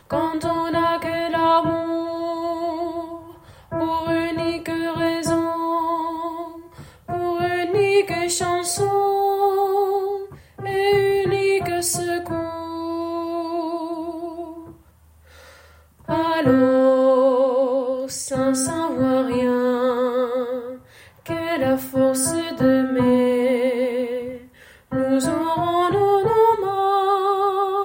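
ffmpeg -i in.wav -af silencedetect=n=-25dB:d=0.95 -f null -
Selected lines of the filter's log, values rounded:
silence_start: 14.44
silence_end: 16.09 | silence_duration: 1.65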